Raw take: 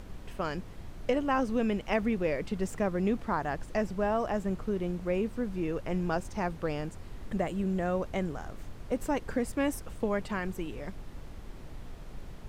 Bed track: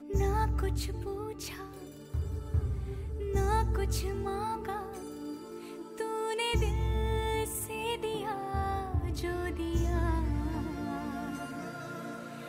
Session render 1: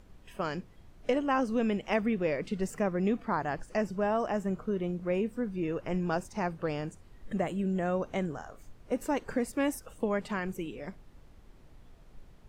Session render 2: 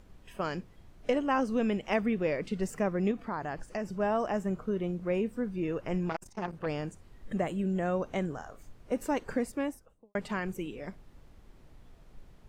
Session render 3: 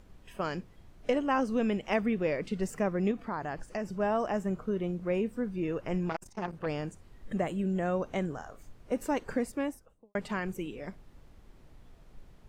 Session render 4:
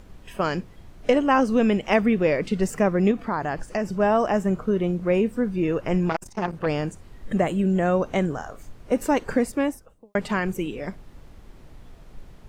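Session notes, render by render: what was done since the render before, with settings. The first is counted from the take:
noise reduction from a noise print 11 dB
0:03.11–0:04.00: downward compressor 2 to 1, threshold −33 dBFS; 0:06.09–0:06.66: saturating transformer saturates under 910 Hz; 0:09.32–0:10.15: fade out and dull
no processing that can be heard
level +9 dB

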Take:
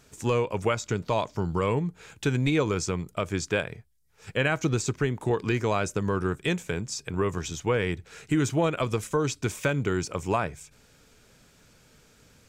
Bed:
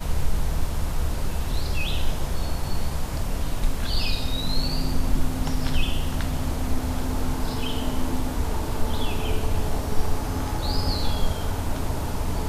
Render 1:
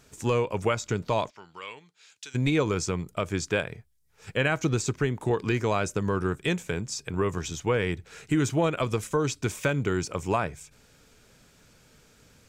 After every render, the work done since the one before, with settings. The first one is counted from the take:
0:01.29–0:02.34: resonant band-pass 2,300 Hz → 6,100 Hz, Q 1.4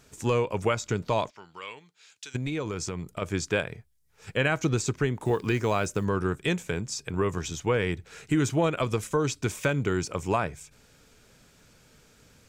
0:02.36–0:03.22: downward compressor 3 to 1, threshold −29 dBFS
0:05.21–0:06.06: one scale factor per block 7 bits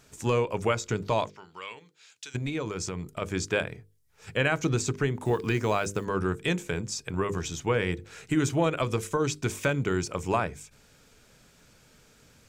mains-hum notches 50/100/150/200/250/300/350/400/450/500 Hz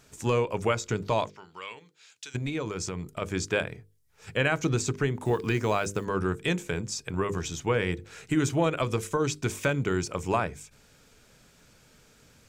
no processing that can be heard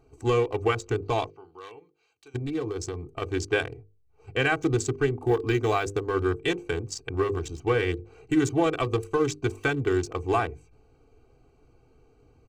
adaptive Wiener filter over 25 samples
comb filter 2.6 ms, depth 91%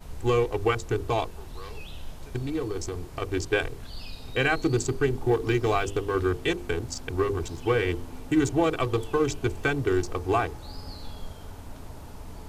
mix in bed −15 dB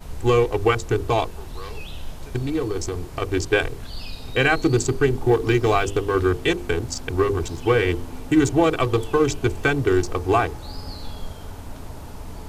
level +5.5 dB

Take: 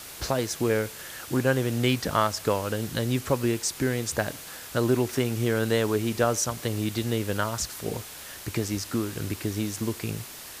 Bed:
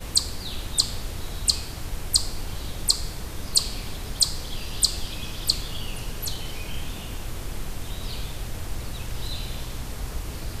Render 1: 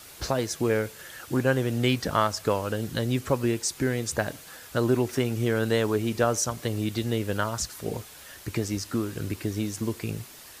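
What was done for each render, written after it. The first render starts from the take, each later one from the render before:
broadband denoise 6 dB, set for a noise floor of −42 dBFS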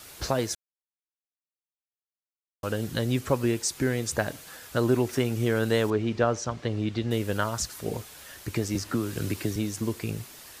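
0:00.55–0:02.63: silence
0:05.90–0:07.11: high-frequency loss of the air 140 metres
0:08.75–0:09.56: multiband upward and downward compressor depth 70%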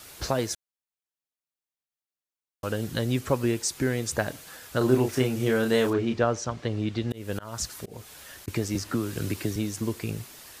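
0:04.78–0:06.14: double-tracking delay 31 ms −5 dB
0:07.01–0:08.48: volume swells 254 ms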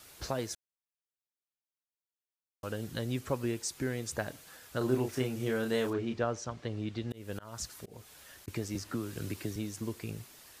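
level −8 dB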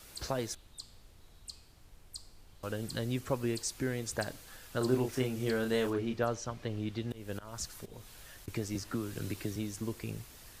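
mix in bed −25.5 dB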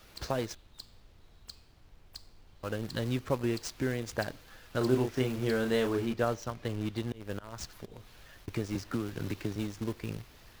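running median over 5 samples
in parallel at −10 dB: bit-depth reduction 6 bits, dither none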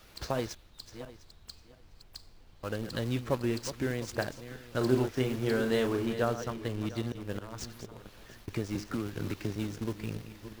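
feedback delay that plays each chunk backwards 351 ms, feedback 42%, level −11 dB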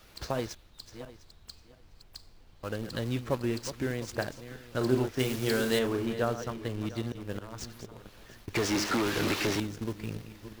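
0:05.19–0:05.79: high-shelf EQ 2,800 Hz +11 dB
0:08.55–0:09.60: mid-hump overdrive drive 29 dB, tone 6,800 Hz, clips at −20 dBFS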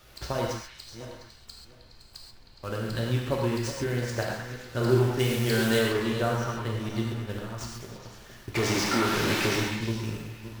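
on a send: echo through a band-pass that steps 104 ms, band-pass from 1,100 Hz, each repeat 0.7 octaves, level −3 dB
on the sum: reverb whose tail is shaped and stops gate 160 ms flat, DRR −0.5 dB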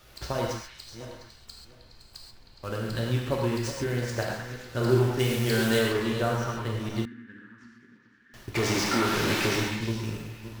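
0:07.05–0:08.34: pair of resonant band-passes 660 Hz, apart 2.7 octaves

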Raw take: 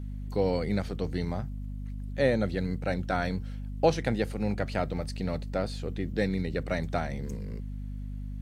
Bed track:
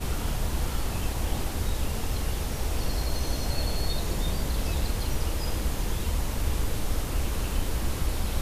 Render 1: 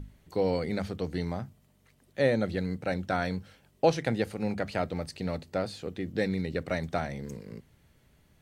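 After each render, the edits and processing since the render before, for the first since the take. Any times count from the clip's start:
mains-hum notches 50/100/150/200/250 Hz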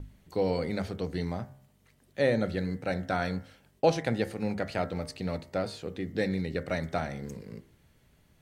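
hum removal 67.01 Hz, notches 33
noise gate with hold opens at −55 dBFS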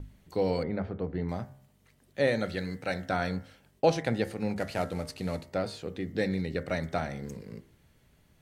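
0:00.63–0:01.29: low-pass filter 1,600 Hz
0:02.27–0:03.09: tilt shelving filter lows −4 dB, about 840 Hz
0:04.56–0:05.45: variable-slope delta modulation 64 kbit/s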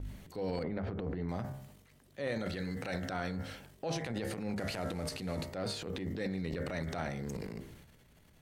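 downward compressor 5 to 1, threshold −33 dBFS, peak gain reduction 14.5 dB
transient designer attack −8 dB, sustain +10 dB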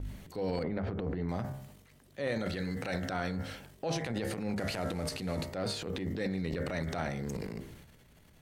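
level +2.5 dB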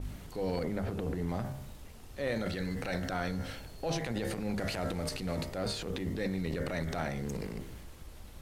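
mix in bed track −21.5 dB

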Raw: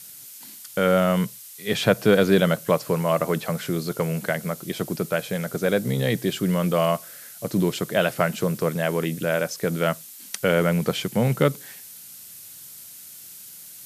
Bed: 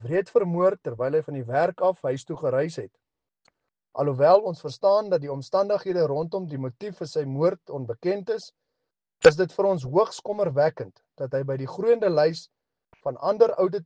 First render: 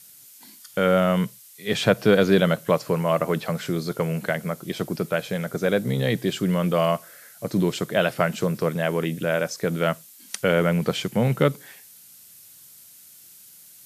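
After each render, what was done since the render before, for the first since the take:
noise reduction from a noise print 6 dB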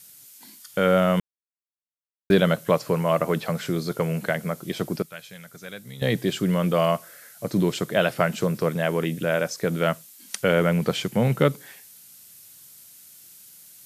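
0:01.20–0:02.30: silence
0:05.02–0:06.02: guitar amp tone stack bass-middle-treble 5-5-5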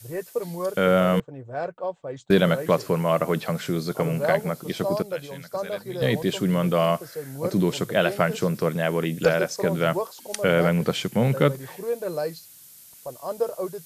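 mix in bed −7.5 dB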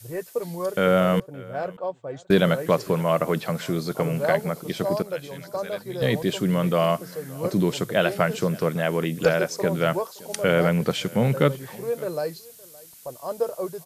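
single-tap delay 568 ms −22.5 dB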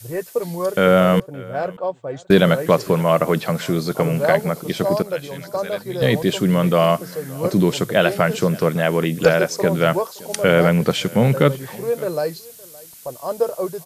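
level +5.5 dB
brickwall limiter −1 dBFS, peak gain reduction 2 dB

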